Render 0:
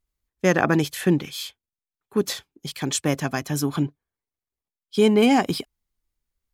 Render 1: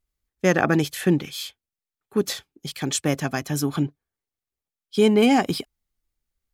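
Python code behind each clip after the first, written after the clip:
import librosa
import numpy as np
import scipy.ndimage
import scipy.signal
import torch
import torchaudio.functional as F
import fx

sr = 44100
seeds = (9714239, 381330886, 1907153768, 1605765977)

y = fx.notch(x, sr, hz=1000.0, q=11.0)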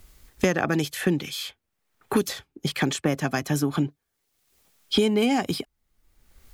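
y = fx.band_squash(x, sr, depth_pct=100)
y = F.gain(torch.from_numpy(y), -2.0).numpy()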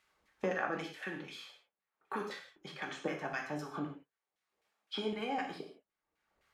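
y = fx.filter_lfo_bandpass(x, sr, shape='saw_down', hz=3.9, low_hz=510.0, high_hz=2100.0, q=1.1)
y = fx.rev_gated(y, sr, seeds[0], gate_ms=200, shape='falling', drr_db=0.5)
y = F.gain(torch.from_numpy(y), -9.0).numpy()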